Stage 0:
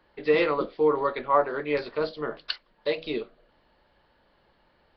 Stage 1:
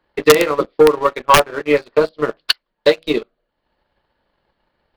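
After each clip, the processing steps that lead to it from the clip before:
wrap-around overflow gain 12 dB
transient designer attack +11 dB, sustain −7 dB
leveller curve on the samples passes 2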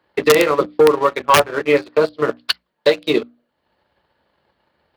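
brickwall limiter −8 dBFS, peak gain reduction 7 dB
high-pass filter 61 Hz 24 dB per octave
mains-hum notches 60/120/180/240/300 Hz
level +3 dB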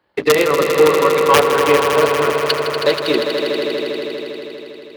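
echo that builds up and dies away 80 ms, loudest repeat 5, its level −8.5 dB
level −1 dB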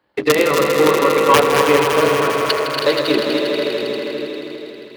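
delay that plays each chunk backwards 147 ms, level −5 dB
on a send at −22 dB: spectral tilt −4.5 dB per octave + convolution reverb RT60 0.15 s, pre-delay 3 ms
on the sum: level −1 dB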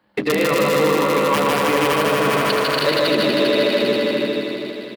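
thirty-one-band graphic EQ 200 Hz +12 dB, 400 Hz −4 dB, 6,300 Hz −3 dB
brickwall limiter −13 dBFS, peak gain reduction 11 dB
single-tap delay 148 ms −3 dB
level +2.5 dB

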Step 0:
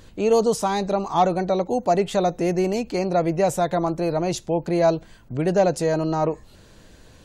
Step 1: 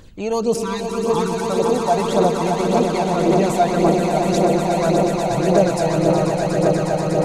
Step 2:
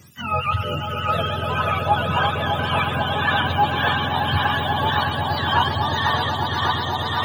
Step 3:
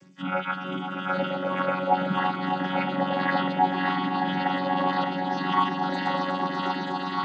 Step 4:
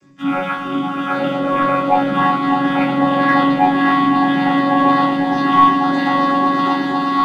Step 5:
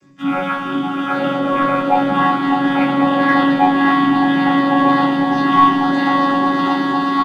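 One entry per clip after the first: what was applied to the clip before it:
time-frequency box erased 0:00.54–0:01.49, 390–820 Hz; echo that builds up and dies away 121 ms, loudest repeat 8, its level −7.5 dB; flanger 1.8 Hz, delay 0 ms, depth 1.4 ms, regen +34%; level +3.5 dB
frequency axis turned over on the octave scale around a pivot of 760 Hz
channel vocoder with a chord as carrier bare fifth, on F#3; level −3.5 dB
leveller curve on the samples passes 1; rectangular room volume 270 cubic metres, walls furnished, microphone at 3.2 metres; level −1.5 dB
single-tap delay 187 ms −10.5 dB

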